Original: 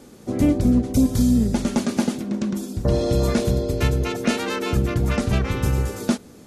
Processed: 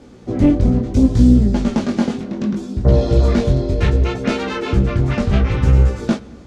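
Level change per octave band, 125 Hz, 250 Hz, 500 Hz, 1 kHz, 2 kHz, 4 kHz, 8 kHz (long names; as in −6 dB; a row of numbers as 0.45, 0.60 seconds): +7.0, +4.0, +3.5, +3.0, +2.0, 0.0, −6.0 decibels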